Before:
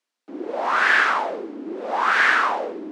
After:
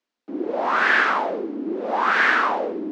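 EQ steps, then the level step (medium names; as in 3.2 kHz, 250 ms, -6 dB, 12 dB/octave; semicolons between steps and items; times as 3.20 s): low-pass 6 kHz 12 dB/octave; bass shelf 420 Hz +10 dB; -1.5 dB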